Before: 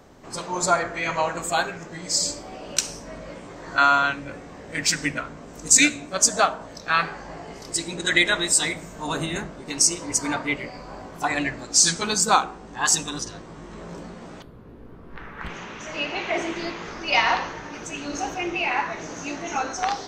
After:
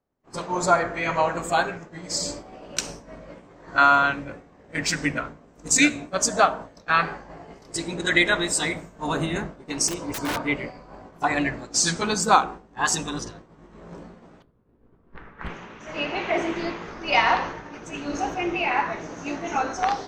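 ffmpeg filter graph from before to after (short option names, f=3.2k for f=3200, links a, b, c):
-filter_complex "[0:a]asettb=1/sr,asplit=3[a][b][c];[a]atrim=end=9.884[d];[b]atrim=start=9.88:end=10.44,asetpts=PTS-STARTPTS,afade=t=in:d=0.004:c=qsin,afade=t=out:st=0.556:d=0.004:c=qsin,equalizer=f=1.9k:w=5.6:g=-7.5,aeval=exprs='(mod(11.2*val(0)+1,2)-1)/11.2':c=same[e];[c]atrim=start=10.436[f];[d][e]acrossfade=d=0.004:c1=hsin:c2=qsin[g];[g][f]acrossfade=d=0.004:c1=qsin:c2=hsin,agate=range=-33dB:threshold=-31dB:ratio=3:detection=peak,highshelf=f=3.1k:g=-9.5,volume=2.5dB"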